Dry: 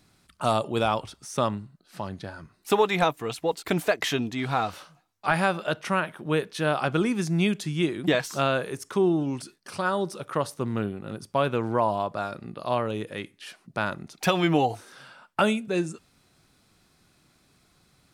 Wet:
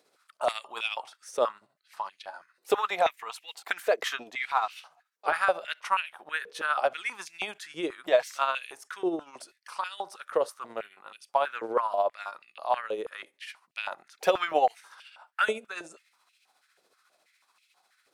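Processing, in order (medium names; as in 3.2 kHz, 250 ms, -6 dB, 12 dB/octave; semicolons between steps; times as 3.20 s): tremolo 14 Hz, depth 49%; step-sequenced high-pass 6.2 Hz 480–2600 Hz; trim -4 dB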